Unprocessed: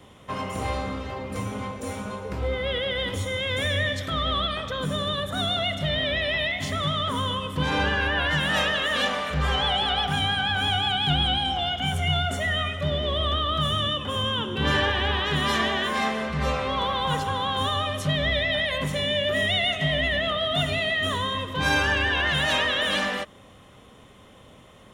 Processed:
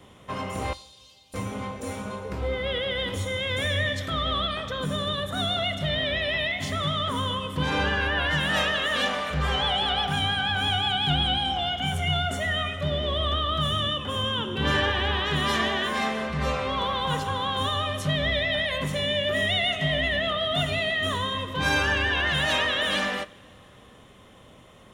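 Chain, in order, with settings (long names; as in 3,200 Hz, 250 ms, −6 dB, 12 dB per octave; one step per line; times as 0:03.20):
0:00.73–0:01.34: inverse Chebyshev high-pass filter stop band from 1,800 Hz, stop band 40 dB
coupled-rooms reverb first 0.43 s, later 3.7 s, from −19 dB, DRR 16 dB
level −1 dB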